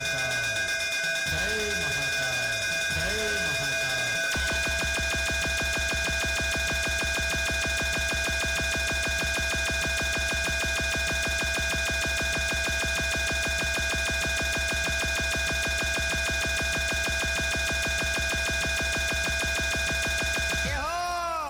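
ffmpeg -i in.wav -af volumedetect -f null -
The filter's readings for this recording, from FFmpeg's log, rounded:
mean_volume: -27.5 dB
max_volume: -24.3 dB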